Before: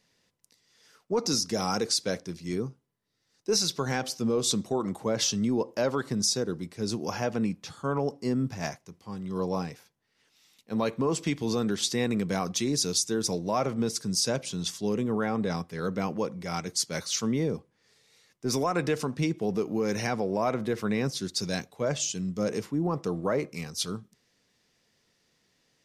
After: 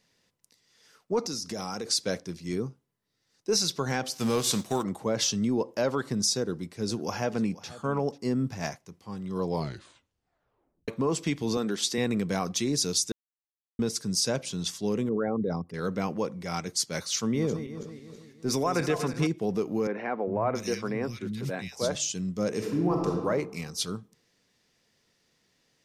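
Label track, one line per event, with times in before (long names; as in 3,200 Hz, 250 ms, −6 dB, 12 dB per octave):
1.230000	1.870000	downward compressor, threshold −30 dBFS
4.130000	4.820000	spectral envelope flattened exponent 0.6
6.400000	8.180000	single-tap delay 490 ms −18 dB
9.420000	9.420000	tape stop 1.46 s
11.570000	11.980000	high-pass filter 200 Hz
13.120000	13.790000	silence
15.090000	15.740000	spectral envelope exaggerated exponent 2
17.180000	19.270000	feedback delay that plays each chunk backwards 163 ms, feedback 63%, level −9.5 dB
19.870000	21.950000	three-band delay without the direct sound mids, lows, highs 400/680 ms, splits 210/2,300 Hz
22.530000	23.110000	thrown reverb, RT60 1.3 s, DRR 0 dB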